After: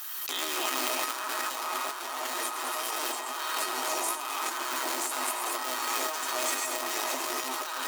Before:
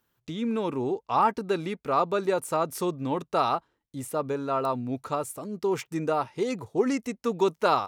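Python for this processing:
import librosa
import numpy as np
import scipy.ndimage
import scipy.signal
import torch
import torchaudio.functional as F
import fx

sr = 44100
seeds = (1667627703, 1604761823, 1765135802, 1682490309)

y = fx.cycle_switch(x, sr, every=3, mode='inverted')
y = fx.echo_split(y, sr, split_hz=880.0, low_ms=340, high_ms=110, feedback_pct=52, wet_db=-4.0)
y = fx.transient(y, sr, attack_db=2, sustain_db=-11)
y = fx.tilt_shelf(y, sr, db=-10.0, hz=910.0)
y = fx.echo_pitch(y, sr, ms=215, semitones=-3, count=2, db_per_echo=-3.0)
y = scipy.signal.sosfilt(scipy.signal.cheby1(6, 9, 250.0, 'highpass', fs=sr, output='sos'), y)
y = y + 10.0 ** (-14.5 / 20.0) * np.pad(y, (int(95 * sr / 1000.0), 0))[:len(y)]
y = fx.over_compress(y, sr, threshold_db=-32.0, ratio=-1.0)
y = fx.high_shelf(y, sr, hz=3300.0, db=9.5)
y = fx.comb_fb(y, sr, f0_hz=630.0, decay_s=0.16, harmonics='all', damping=0.0, mix_pct=80)
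y = fx.pre_swell(y, sr, db_per_s=21.0)
y = F.gain(torch.from_numpy(y), 7.0).numpy()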